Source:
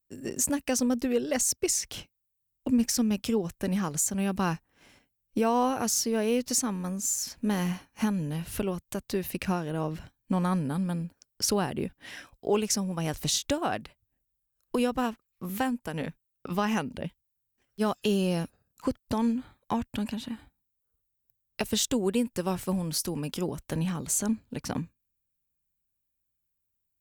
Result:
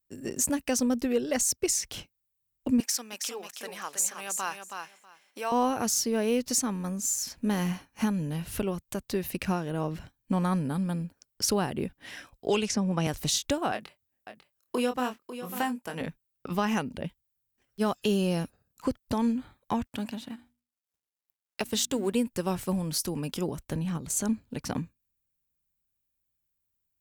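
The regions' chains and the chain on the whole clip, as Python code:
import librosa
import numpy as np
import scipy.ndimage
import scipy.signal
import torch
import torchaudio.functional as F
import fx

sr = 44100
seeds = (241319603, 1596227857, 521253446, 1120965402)

y = fx.chain(x, sr, fx.highpass(hz=800.0, slope=12),
    fx.echo_feedback(ms=322, feedback_pct=15, wet_db=-6.0), at=(2.8, 5.52))
y = fx.chain(y, sr, fx.air_absorb(metres=66.0),
    fx.band_squash(depth_pct=100), at=(12.48, 13.07))
y = fx.chain(y, sr, fx.highpass(hz=340.0, slope=6),
    fx.doubler(ms=24.0, db=-7.0),
    fx.echo_single(ms=547, db=-11.5), at=(13.72, 16.01))
y = fx.chain(y, sr, fx.law_mismatch(coded='A'),
    fx.low_shelf(hz=74.0, db=-12.0),
    fx.hum_notches(base_hz=60, count=5), at=(19.86, 22.13))
y = fx.chain(y, sr, fx.low_shelf(hz=330.0, db=5.0),
    fx.level_steps(step_db=10), at=(23.63, 24.17))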